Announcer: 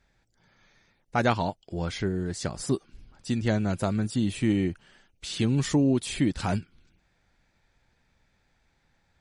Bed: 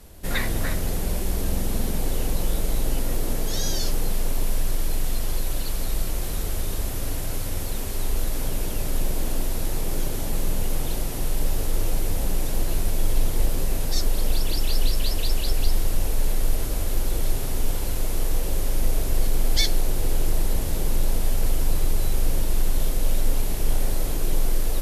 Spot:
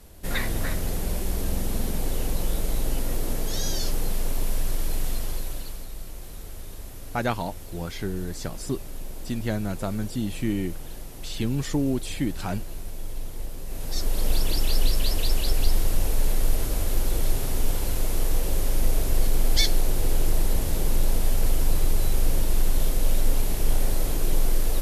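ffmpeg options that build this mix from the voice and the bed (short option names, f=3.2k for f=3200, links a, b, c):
-filter_complex "[0:a]adelay=6000,volume=-2.5dB[a];[1:a]volume=10dB,afade=t=out:st=5.08:d=0.8:silence=0.316228,afade=t=in:st=13.64:d=0.7:silence=0.251189[b];[a][b]amix=inputs=2:normalize=0"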